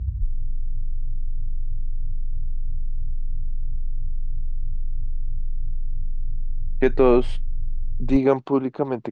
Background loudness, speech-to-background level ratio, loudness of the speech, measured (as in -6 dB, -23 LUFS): -34.0 LUFS, 13.0 dB, -21.0 LUFS